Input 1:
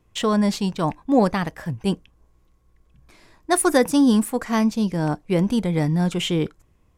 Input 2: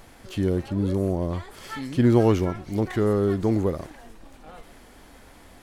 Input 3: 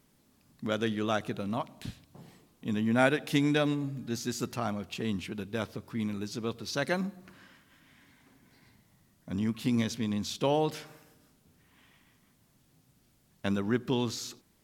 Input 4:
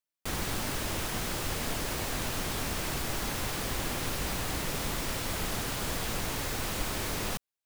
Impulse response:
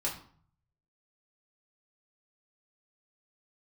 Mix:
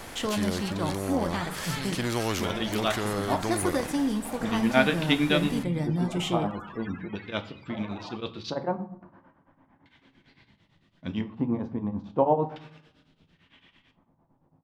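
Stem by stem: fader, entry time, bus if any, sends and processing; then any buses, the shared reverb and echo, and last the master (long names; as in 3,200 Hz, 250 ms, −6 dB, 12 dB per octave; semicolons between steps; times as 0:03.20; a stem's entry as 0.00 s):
−8.0 dB, 0.00 s, send −8 dB, downward compressor 3 to 1, threshold −22 dBFS, peak gain reduction 8.5 dB
−5.5 dB, 0.00 s, no send, every bin compressed towards the loudest bin 2 to 1
0.0 dB, 1.75 s, send −8 dB, auto-filter low-pass square 0.37 Hz 870–3,300 Hz; tremolo along a rectified sine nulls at 8.9 Hz
−3.5 dB, 0.80 s, no send, spectral peaks only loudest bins 32; auto-filter high-pass saw up 0.58 Hz 560–3,500 Hz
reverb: on, RT60 0.50 s, pre-delay 3 ms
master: no processing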